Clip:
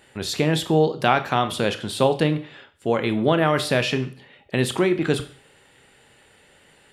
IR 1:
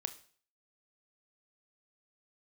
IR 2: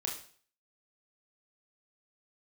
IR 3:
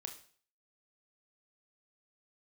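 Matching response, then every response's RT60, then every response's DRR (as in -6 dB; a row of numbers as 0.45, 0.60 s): 1; 0.45, 0.45, 0.45 s; 9.5, -1.0, 4.0 dB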